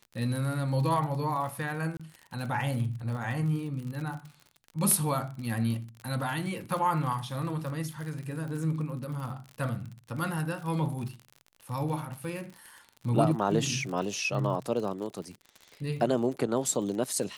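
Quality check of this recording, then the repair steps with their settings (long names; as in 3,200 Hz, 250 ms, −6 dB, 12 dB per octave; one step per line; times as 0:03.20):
surface crackle 55 per second −36 dBFS
0:01.97–0:02.00: drop-out 26 ms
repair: click removal
repair the gap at 0:01.97, 26 ms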